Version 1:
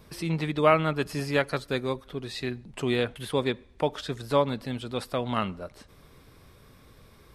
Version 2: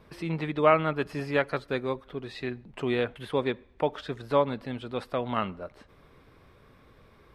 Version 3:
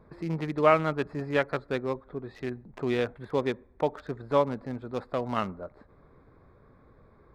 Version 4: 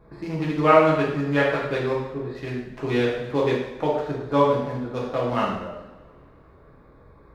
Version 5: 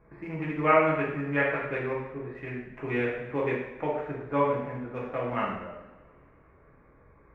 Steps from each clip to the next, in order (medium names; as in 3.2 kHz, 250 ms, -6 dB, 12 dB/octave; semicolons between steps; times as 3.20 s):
tone controls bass -4 dB, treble -14 dB
local Wiener filter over 15 samples
two-slope reverb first 0.85 s, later 2.6 s, from -23 dB, DRR -5.5 dB
resonant high shelf 3.1 kHz -11 dB, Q 3; trim -7 dB